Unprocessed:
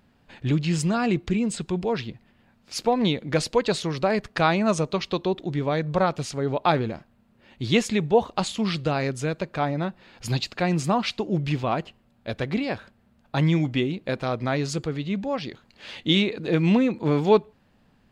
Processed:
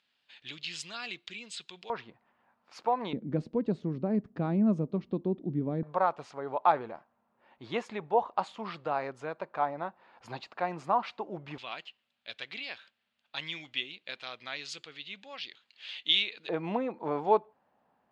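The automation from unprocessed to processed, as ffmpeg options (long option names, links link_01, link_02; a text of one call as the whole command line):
ffmpeg -i in.wav -af "asetnsamples=nb_out_samples=441:pad=0,asendcmd='1.9 bandpass f 1000;3.13 bandpass f 230;5.83 bandpass f 930;11.58 bandpass f 3200;16.49 bandpass f 810',bandpass=frequency=3500:width_type=q:width=1.9:csg=0" out.wav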